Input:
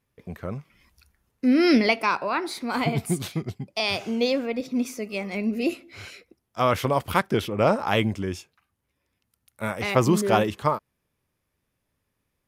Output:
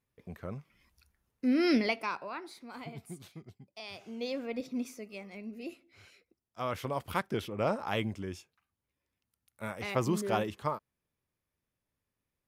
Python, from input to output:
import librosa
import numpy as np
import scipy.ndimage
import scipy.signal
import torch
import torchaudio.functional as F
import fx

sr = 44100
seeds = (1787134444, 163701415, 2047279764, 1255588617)

y = fx.gain(x, sr, db=fx.line((1.75, -8.0), (2.78, -19.5), (3.92, -19.5), (4.58, -7.5), (5.42, -17.0), (6.08, -17.0), (7.17, -10.0)))